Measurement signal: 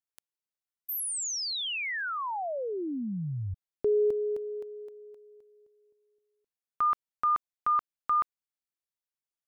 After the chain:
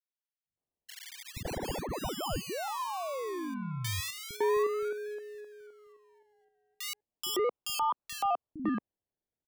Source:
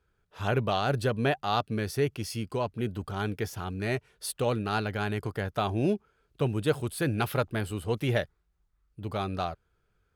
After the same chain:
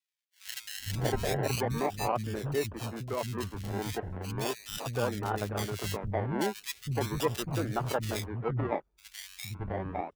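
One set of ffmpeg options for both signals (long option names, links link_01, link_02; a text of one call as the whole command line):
ffmpeg -i in.wav -filter_complex "[0:a]acrusher=samples=29:mix=1:aa=0.000001:lfo=1:lforange=17.4:lforate=0.37,acrossover=split=210|2000[link_01][link_02][link_03];[link_01]adelay=460[link_04];[link_02]adelay=560[link_05];[link_04][link_05][link_03]amix=inputs=3:normalize=0,volume=-2dB" out.wav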